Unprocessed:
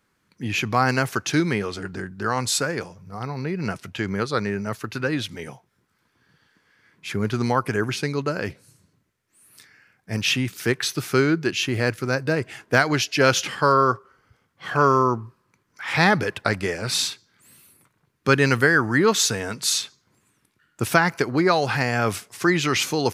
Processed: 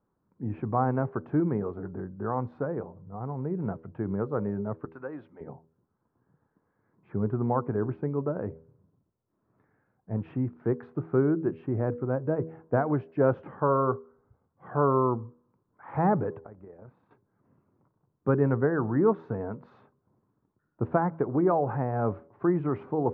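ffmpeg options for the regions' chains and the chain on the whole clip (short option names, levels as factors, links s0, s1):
-filter_complex "[0:a]asettb=1/sr,asplit=3[s0][s1][s2];[s0]atrim=end=4.854[s3];[s1]atrim=start=4.85:end=5.41,asetpts=PTS-STARTPTS,afade=t=in:d=0.004:c=qsin,afade=t=out:st=0.556:d=0.004:c=qsin,highpass=f=980:p=1,highshelf=f=3700:g=9.5[s4];[s2]atrim=start=5.406[s5];[s3][s4]acrossfade=d=0.004:c1=hsin:c2=qsin[s6];[s6][s5]acrossfade=d=0.004:c1=qsin:c2=hsin,asettb=1/sr,asplit=3[s7][s8][s9];[s7]atrim=end=16.404[s10];[s8]atrim=start=16.4:end=17.11,asetpts=PTS-STARTPTS,afade=t=in:d=0.004:c=qsin,afade=t=out:st=0.706:d=0.004:c=qsin,bass=f=250:g=-1,treble=f=4000:g=-5,acompressor=threshold=0.00316:ratio=2:attack=3.2:release=140:knee=1:detection=peak,tremolo=f=33:d=0.4[s11];[s9]atrim=start=17.106[s12];[s10][s11]acrossfade=d=0.004:c1=hsin:c2=qsin[s13];[s13][s12]acrossfade=d=0.004:c1=qsin:c2=hsin,lowpass=f=1000:w=0.5412,lowpass=f=1000:w=1.3066,bandreject=f=80.71:t=h:w=4,bandreject=f=161.42:t=h:w=4,bandreject=f=242.13:t=h:w=4,bandreject=f=322.84:t=h:w=4,bandreject=f=403.55:t=h:w=4,bandreject=f=484.26:t=h:w=4,bandreject=f=564.97:t=h:w=4,volume=0.668"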